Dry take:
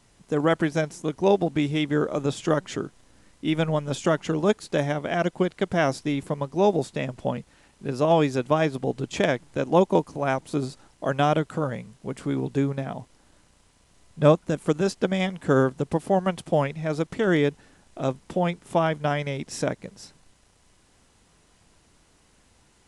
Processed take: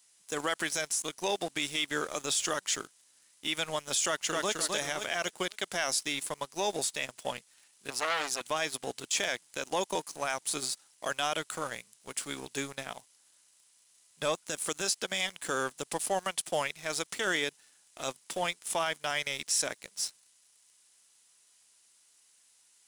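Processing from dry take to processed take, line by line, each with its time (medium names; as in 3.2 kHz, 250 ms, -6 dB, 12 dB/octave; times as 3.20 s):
4.06–4.55 s: echo throw 260 ms, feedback 40%, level -4 dB
7.90–8.41 s: transformer saturation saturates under 1.9 kHz
whole clip: differentiator; waveshaping leveller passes 2; peak limiter -25.5 dBFS; trim +6 dB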